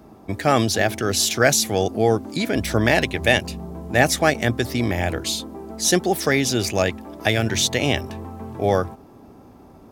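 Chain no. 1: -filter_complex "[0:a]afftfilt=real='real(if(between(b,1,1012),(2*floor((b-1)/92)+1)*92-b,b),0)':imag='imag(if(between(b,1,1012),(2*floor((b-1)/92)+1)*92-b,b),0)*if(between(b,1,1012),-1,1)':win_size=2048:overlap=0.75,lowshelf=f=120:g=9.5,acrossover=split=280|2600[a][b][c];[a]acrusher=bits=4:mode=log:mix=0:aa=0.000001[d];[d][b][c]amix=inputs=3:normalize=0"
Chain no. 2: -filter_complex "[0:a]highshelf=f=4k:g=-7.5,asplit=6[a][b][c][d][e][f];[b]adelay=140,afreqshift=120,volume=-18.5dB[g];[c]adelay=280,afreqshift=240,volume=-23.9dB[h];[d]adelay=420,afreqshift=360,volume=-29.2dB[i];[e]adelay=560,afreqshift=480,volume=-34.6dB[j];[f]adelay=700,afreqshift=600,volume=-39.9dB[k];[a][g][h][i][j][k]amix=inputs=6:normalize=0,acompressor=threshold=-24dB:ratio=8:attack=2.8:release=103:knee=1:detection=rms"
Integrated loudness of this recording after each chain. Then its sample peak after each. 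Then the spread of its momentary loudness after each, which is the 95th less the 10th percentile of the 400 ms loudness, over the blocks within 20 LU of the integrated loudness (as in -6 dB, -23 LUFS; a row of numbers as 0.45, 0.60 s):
-19.0, -30.5 LUFS; -2.0, -13.0 dBFS; 9, 6 LU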